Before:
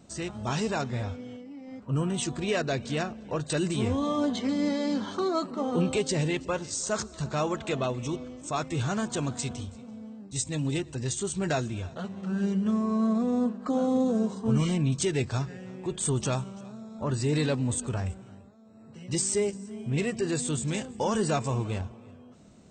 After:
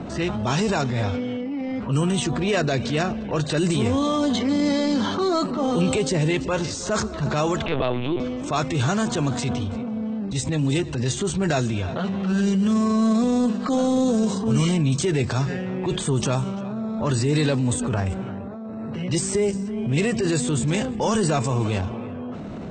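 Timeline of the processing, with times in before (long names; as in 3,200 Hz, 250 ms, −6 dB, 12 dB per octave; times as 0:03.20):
0:07.66–0:08.20: linear-prediction vocoder at 8 kHz pitch kept
whole clip: low-pass that shuts in the quiet parts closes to 1,600 Hz, open at −23 dBFS; transient designer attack −7 dB, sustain +5 dB; multiband upward and downward compressor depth 70%; level +6.5 dB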